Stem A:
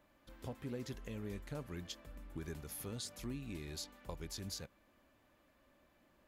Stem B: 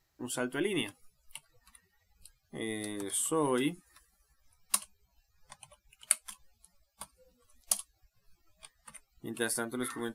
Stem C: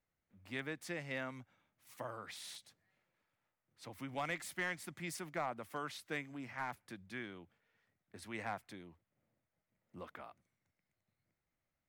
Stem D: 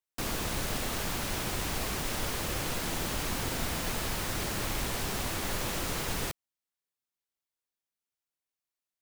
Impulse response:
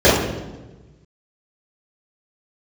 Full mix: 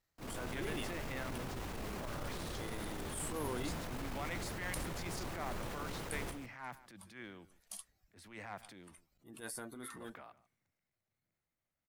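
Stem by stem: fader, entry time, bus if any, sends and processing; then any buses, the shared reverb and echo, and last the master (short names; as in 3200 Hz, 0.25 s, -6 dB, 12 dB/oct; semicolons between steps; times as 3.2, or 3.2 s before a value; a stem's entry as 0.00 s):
-5.5 dB, 0.65 s, no send, no echo send, dry
-10.5 dB, 0.00 s, no send, no echo send, dry
-3.0 dB, 0.00 s, no send, echo send -22 dB, dry
-8.0 dB, 0.00 s, no send, echo send -9.5 dB, high shelf 2300 Hz -11 dB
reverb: off
echo: echo 0.146 s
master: transient shaper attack -11 dB, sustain +4 dB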